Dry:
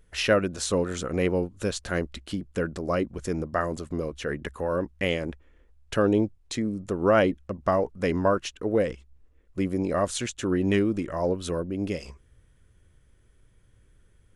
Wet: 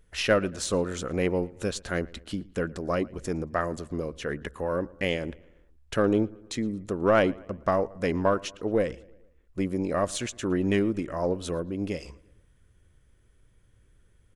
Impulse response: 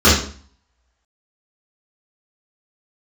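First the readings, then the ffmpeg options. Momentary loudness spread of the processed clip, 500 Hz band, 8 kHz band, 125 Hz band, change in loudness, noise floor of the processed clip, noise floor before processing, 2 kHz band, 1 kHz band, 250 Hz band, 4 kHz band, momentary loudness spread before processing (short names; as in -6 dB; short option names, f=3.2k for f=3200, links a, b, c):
9 LU, -1.5 dB, -1.5 dB, -2.0 dB, -1.5 dB, -62 dBFS, -61 dBFS, -1.0 dB, -1.0 dB, -1.5 dB, -1.5 dB, 9 LU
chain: -filter_complex "[0:a]asplit=2[a][b];[b]adelay=114,lowpass=f=3.5k:p=1,volume=-22.5dB,asplit=2[c][d];[d]adelay=114,lowpass=f=3.5k:p=1,volume=0.53,asplit=2[e][f];[f]adelay=114,lowpass=f=3.5k:p=1,volume=0.53,asplit=2[g][h];[h]adelay=114,lowpass=f=3.5k:p=1,volume=0.53[i];[a][c][e][g][i]amix=inputs=5:normalize=0,aeval=exprs='0.398*(cos(1*acos(clip(val(0)/0.398,-1,1)))-cos(1*PI/2))+0.0224*(cos(3*acos(clip(val(0)/0.398,-1,1)))-cos(3*PI/2))+0.00794*(cos(6*acos(clip(val(0)/0.398,-1,1)))-cos(6*PI/2))':c=same"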